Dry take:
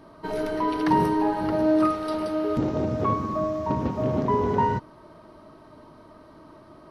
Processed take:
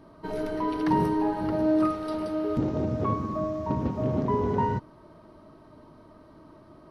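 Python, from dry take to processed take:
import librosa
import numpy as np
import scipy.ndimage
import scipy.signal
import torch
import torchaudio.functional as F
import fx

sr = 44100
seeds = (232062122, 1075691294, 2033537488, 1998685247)

y = fx.low_shelf(x, sr, hz=430.0, db=5.5)
y = y * 10.0 ** (-5.5 / 20.0)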